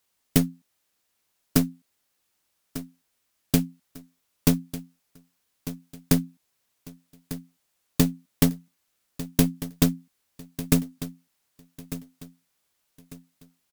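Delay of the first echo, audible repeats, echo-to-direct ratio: 1,198 ms, 3, −13.5 dB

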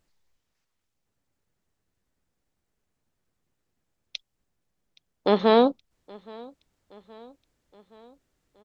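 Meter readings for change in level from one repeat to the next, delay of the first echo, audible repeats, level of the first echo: −5.0 dB, 821 ms, 3, −24.0 dB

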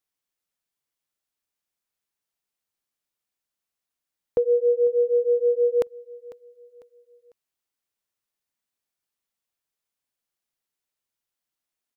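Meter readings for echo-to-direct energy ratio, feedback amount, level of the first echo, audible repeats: −18.5 dB, 38%, −19.0 dB, 2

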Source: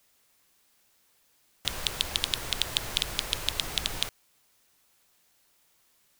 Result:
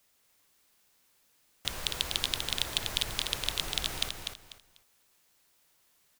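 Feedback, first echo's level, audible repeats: 25%, −5.0 dB, 3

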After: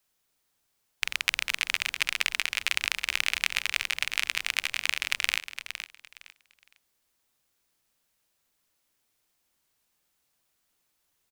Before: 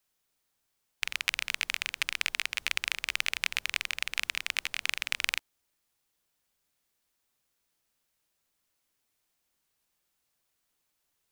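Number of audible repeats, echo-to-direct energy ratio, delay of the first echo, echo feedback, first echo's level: 2, −10.0 dB, 462 ms, 23%, −10.0 dB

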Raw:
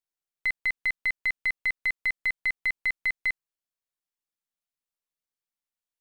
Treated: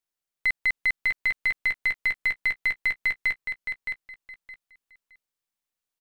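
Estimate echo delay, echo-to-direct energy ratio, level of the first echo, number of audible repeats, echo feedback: 617 ms, −7.0 dB, −7.0 dB, 3, 22%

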